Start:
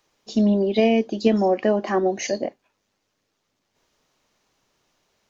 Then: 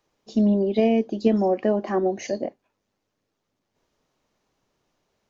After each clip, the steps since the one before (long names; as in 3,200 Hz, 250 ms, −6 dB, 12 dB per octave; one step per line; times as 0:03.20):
tilt shelving filter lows +4 dB, about 1,100 Hz
level −4.5 dB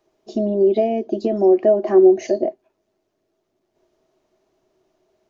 downward compressor 3 to 1, threshold −24 dBFS, peak gain reduction 8.5 dB
hollow resonant body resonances 370/640 Hz, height 18 dB, ringing for 70 ms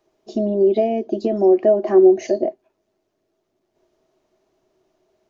no processing that can be heard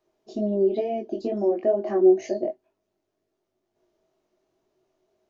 chorus effect 2.1 Hz, delay 19 ms, depth 2.6 ms
level −3.5 dB